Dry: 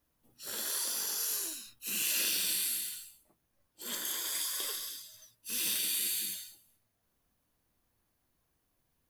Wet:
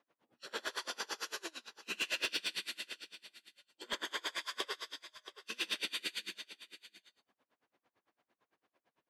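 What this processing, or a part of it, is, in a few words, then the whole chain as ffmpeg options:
helicopter radio: -filter_complex "[0:a]asettb=1/sr,asplit=3[a][b][c];[a]atrim=end=2.304[d];[b]atrim=start=2.3:end=3.84,asetpts=PTS-STARTPTS,afade=t=in:d=0.004:c=qsin,afade=t=out:st=1.536:d=0.004:c=qsin,equalizer=f=830:w=0.65:g=-4[e];[c]atrim=start=3.836[f];[d][e]acrossfade=d=0.004:c1=hsin:c2=qsin[g];[g][f]acrossfade=d=0.004:c1=qsin:c2=hsin,highpass=360,lowpass=2.7k,aecho=1:1:677:0.178,aeval=exprs='val(0)*pow(10,-29*(0.5-0.5*cos(2*PI*8.9*n/s))/20)':c=same,asoftclip=type=hard:threshold=-38.5dB,volume=11dB"

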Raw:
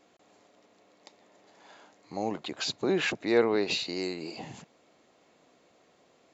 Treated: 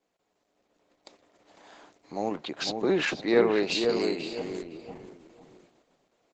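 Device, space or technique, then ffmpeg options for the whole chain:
video call: -filter_complex "[0:a]asplit=3[a][b][c];[a]afade=t=out:st=2.36:d=0.02[d];[b]lowpass=f=6.6k:w=0.5412,lowpass=f=6.6k:w=1.3066,afade=t=in:st=2.36:d=0.02,afade=t=out:st=3.46:d=0.02[e];[c]afade=t=in:st=3.46:d=0.02[f];[d][e][f]amix=inputs=3:normalize=0,highpass=140,asplit=2[g][h];[h]adelay=500,lowpass=f=1.3k:p=1,volume=-4dB,asplit=2[i][j];[j]adelay=500,lowpass=f=1.3k:p=1,volume=0.3,asplit=2[k][l];[l]adelay=500,lowpass=f=1.3k:p=1,volume=0.3,asplit=2[m][n];[n]adelay=500,lowpass=f=1.3k:p=1,volume=0.3[o];[g][i][k][m][o]amix=inputs=5:normalize=0,dynaudnorm=f=100:g=11:m=6.5dB,agate=range=-10dB:threshold=-52dB:ratio=16:detection=peak,volume=-4dB" -ar 48000 -c:a libopus -b:a 12k

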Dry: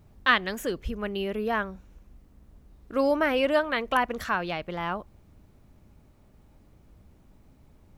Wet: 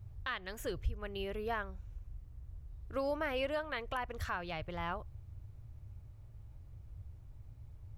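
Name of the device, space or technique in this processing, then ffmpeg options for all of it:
car stereo with a boomy subwoofer: -af "lowshelf=f=150:t=q:w=3:g=11,alimiter=limit=-18dB:level=0:latency=1:release=330,volume=-7.5dB"

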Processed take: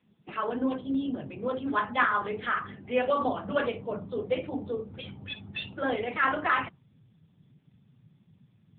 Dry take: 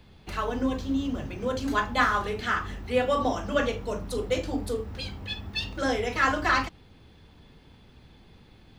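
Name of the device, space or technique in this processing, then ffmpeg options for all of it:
mobile call with aggressive noise cancelling: -af "asubboost=boost=5.5:cutoff=110,highpass=f=140:w=0.5412,highpass=f=140:w=1.3066,afftdn=nr=14:nf=-44" -ar 8000 -c:a libopencore_amrnb -b:a 7950

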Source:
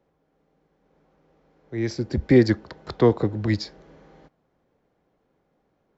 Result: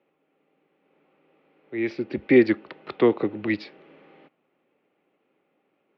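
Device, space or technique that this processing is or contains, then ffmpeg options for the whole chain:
phone earpiece: -af "highpass=360,equalizer=f=480:t=q:w=4:g=-6,equalizer=f=690:t=q:w=4:g=-8,equalizer=f=980:t=q:w=4:g=-8,equalizer=f=1.6k:t=q:w=4:g=-8,equalizer=f=2.6k:t=q:w=4:g=7,lowpass=f=3k:w=0.5412,lowpass=f=3k:w=1.3066,volume=5.5dB"

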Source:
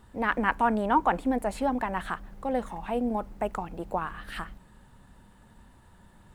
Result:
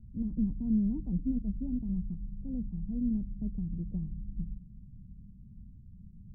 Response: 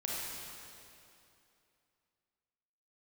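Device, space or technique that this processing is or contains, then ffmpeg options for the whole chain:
the neighbour's flat through the wall: -af "lowpass=f=190:w=0.5412,lowpass=f=190:w=1.3066,equalizer=f=180:t=o:w=0.77:g=3,volume=6dB"

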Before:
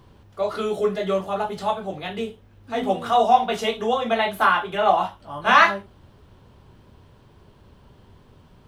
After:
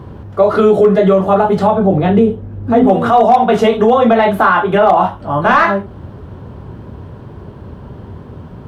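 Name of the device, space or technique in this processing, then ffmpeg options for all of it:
mastering chain: -filter_complex "[0:a]asettb=1/sr,asplit=3[a][b][c];[a]atrim=end=1.674[d];[b]atrim=start=1.67:end=2.87,asetpts=PTS-STARTPTS,afade=t=in:d=0.004:c=qsin,afade=t=out:st=1.196:d=0.004:c=qsin,tiltshelf=f=690:g=5[e];[c]atrim=start=2.866[f];[d][e]acrossfade=d=0.004:c1=hsin:c2=qsin[g];[g][f]acrossfade=d=0.004:c1=qsin:c2=hsin,highpass=59,equalizer=f=1.5k:t=o:w=1:g=4,acompressor=threshold=-26dB:ratio=1.5,asoftclip=type=tanh:threshold=-11dB,tiltshelf=f=1.3k:g=9,asoftclip=type=hard:threshold=-10dB,alimiter=level_in=13.5dB:limit=-1dB:release=50:level=0:latency=1,volume=-1dB"

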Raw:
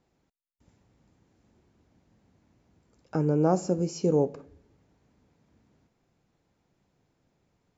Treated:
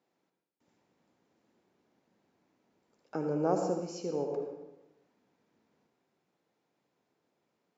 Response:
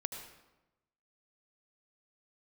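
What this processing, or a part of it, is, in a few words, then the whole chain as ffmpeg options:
supermarket ceiling speaker: -filter_complex "[0:a]highpass=270,lowpass=6.5k[a];[1:a]atrim=start_sample=2205[b];[a][b]afir=irnorm=-1:irlink=0,asettb=1/sr,asplit=3[c][d][e];[c]atrim=end=3.814[f];[d]atrim=start=3.81:end=4.33,asetpts=PTS-STARTPTS,afade=t=in:d=0.004:c=qsin,afade=t=out:st=0.516:d=0.004:c=qsin,equalizer=f=370:t=o:w=2.3:g=-5.5[g];[e]atrim=start=4.326[h];[f][g]acrossfade=d=0.004:c1=hsin:c2=qsin[i];[i][h]acrossfade=d=0.004:c1=qsin:c2=hsin,volume=-3.5dB"

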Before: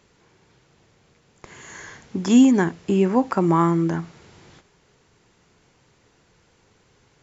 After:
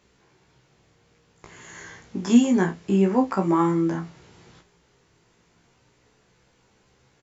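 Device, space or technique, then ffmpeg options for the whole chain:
double-tracked vocal: -filter_complex "[0:a]asplit=2[a][b];[b]adelay=30,volume=-8.5dB[c];[a][c]amix=inputs=2:normalize=0,flanger=delay=15.5:depth=2.1:speed=0.29"

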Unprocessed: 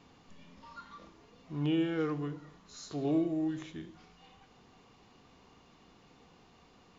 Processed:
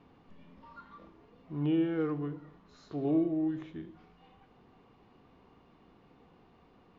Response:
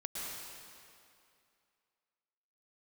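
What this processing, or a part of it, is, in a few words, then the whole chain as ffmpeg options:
phone in a pocket: -af "lowpass=3.7k,equalizer=f=340:t=o:w=0.77:g=2,highshelf=f=2.3k:g=-9"

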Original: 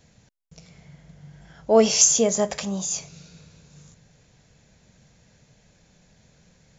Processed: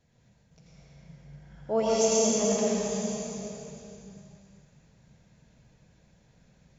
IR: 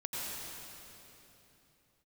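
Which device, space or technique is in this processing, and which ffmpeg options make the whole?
swimming-pool hall: -filter_complex "[1:a]atrim=start_sample=2205[a];[0:a][a]afir=irnorm=-1:irlink=0,highshelf=f=3.3k:g=-7,volume=-7dB"

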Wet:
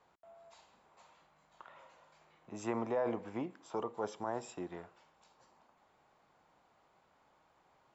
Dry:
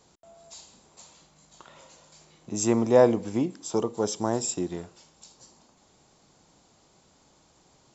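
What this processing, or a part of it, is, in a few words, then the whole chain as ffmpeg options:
DJ mixer with the lows and highs turned down: -filter_complex "[0:a]acrossover=split=600 2500:gain=0.224 1 0.0708[a][b][c];[a][b][c]amix=inputs=3:normalize=0,alimiter=limit=-23.5dB:level=0:latency=1:release=19,volume=-2dB"

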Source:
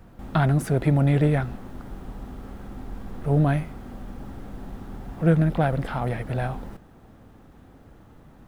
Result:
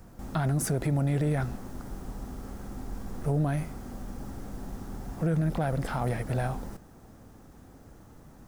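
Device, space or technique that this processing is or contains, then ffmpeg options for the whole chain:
over-bright horn tweeter: -af "highshelf=f=4.4k:t=q:w=1.5:g=7.5,alimiter=limit=-18.5dB:level=0:latency=1:release=60,volume=-1.5dB"

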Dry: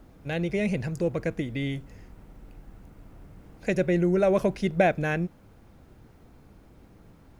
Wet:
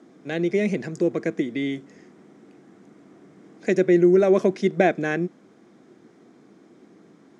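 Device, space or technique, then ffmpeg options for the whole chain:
television speaker: -af "highpass=f=200:w=0.5412,highpass=f=200:w=1.3066,equalizer=f=360:t=q:w=4:g=5,equalizer=f=550:t=q:w=4:g=-6,equalizer=f=890:t=q:w=4:g=-8,equalizer=f=1.4k:t=q:w=4:g=-4,equalizer=f=2.7k:t=q:w=4:g=-8,equalizer=f=4.4k:t=q:w=4:g=-5,lowpass=f=7.7k:w=0.5412,lowpass=f=7.7k:w=1.3066,volume=5.5dB"

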